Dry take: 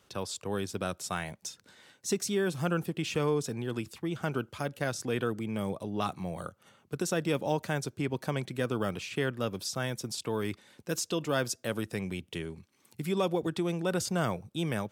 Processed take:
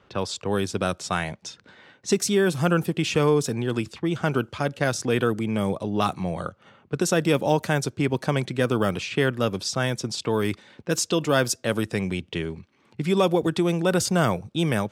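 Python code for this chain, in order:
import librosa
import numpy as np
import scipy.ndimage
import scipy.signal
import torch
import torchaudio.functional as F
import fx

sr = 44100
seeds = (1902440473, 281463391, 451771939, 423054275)

y = fx.env_lowpass(x, sr, base_hz=2400.0, full_db=-27.0)
y = y * 10.0 ** (8.5 / 20.0)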